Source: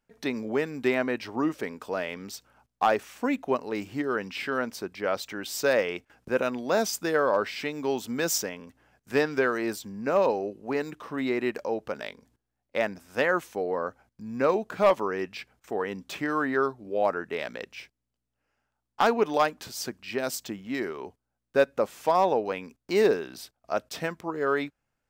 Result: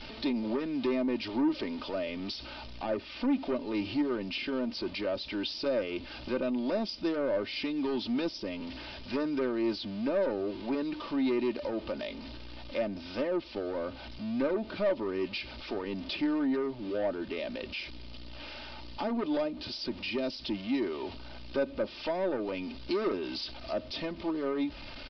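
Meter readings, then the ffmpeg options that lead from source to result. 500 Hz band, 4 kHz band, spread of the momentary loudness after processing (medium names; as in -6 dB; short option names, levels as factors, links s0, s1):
-6.0 dB, +0.5 dB, 9 LU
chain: -filter_complex "[0:a]aeval=exprs='val(0)+0.5*0.0112*sgn(val(0))':c=same,acrossover=split=550[s0][s1];[s1]acompressor=threshold=0.0112:ratio=5[s2];[s0][s2]amix=inputs=2:normalize=0,highshelf=f=2700:g=-12,aexciter=amount=6.1:drive=3.6:freq=2500,aresample=11025,asoftclip=type=tanh:threshold=0.0501,aresample=44100,aecho=1:1:3.3:0.61"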